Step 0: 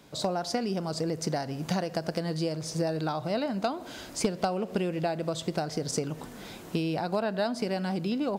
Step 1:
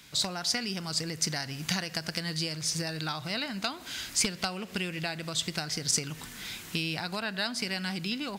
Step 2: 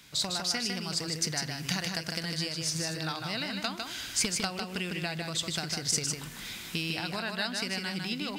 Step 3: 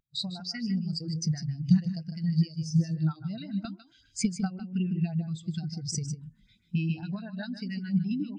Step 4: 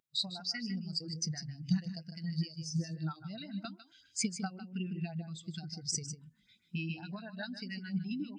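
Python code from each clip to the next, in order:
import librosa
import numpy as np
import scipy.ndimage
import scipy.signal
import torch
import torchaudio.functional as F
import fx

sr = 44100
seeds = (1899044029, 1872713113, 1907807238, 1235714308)

y1 = fx.curve_eq(x, sr, hz=(100.0, 590.0, 2000.0), db=(0, -12, 8))
y2 = y1 + 10.0 ** (-4.5 / 20.0) * np.pad(y1, (int(153 * sr / 1000.0), 0))[:len(y1)]
y2 = y2 * librosa.db_to_amplitude(-1.5)
y3 = fx.filter_lfo_notch(y2, sr, shape='saw_up', hz=7.4, low_hz=300.0, high_hz=4700.0, q=1.1)
y3 = fx.low_shelf(y3, sr, hz=140.0, db=6.0)
y3 = fx.spectral_expand(y3, sr, expansion=2.5)
y4 = fx.highpass(y3, sr, hz=490.0, slope=6)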